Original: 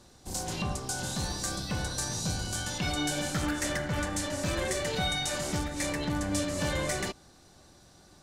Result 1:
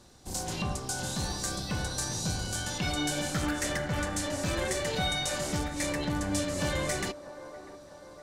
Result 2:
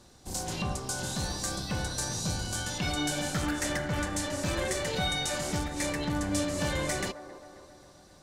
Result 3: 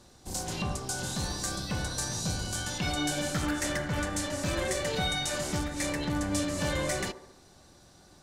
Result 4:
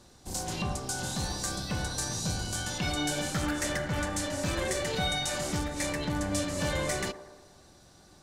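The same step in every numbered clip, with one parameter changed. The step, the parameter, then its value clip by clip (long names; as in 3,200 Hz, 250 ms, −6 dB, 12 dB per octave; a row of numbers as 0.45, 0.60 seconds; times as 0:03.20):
delay with a band-pass on its return, delay time: 645, 267, 72, 116 milliseconds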